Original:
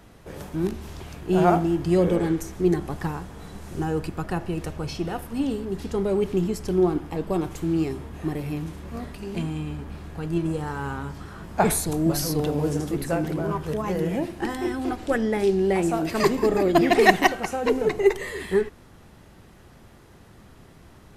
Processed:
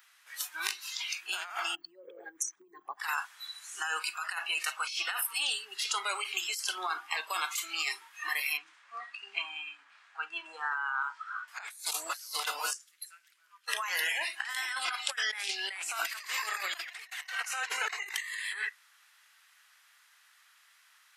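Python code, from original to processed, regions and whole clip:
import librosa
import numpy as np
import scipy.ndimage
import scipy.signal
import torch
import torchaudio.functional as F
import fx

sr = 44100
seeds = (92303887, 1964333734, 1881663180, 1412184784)

y = fx.chain(x, sr, fx.envelope_sharpen(power=2.0),
    fx.over_compress(threshold_db=-25.0, ratio=-1.0),
    fx.resample_bad(factor=2, down='none', up='filtered'), at=(1.75, 3.0))
y = fx.chain(y, sr, fx.lowpass(hz=8500.0, slope=24),
    fx.high_shelf(hz=2700.0, db=-11.5), at=(8.57, 11.48))
y = fx.chain(y, sr, fx.tone_stack(knobs='6-0-2'),
    fx.doppler_dist(depth_ms=0.11), at=(12.73, 13.68))
y = fx.noise_reduce_blind(y, sr, reduce_db=18)
y = scipy.signal.sosfilt(scipy.signal.butter(4, 1400.0, 'highpass', fs=sr, output='sos'), y)
y = fx.over_compress(y, sr, threshold_db=-46.0, ratio=-1.0)
y = y * 10.0 ** (8.5 / 20.0)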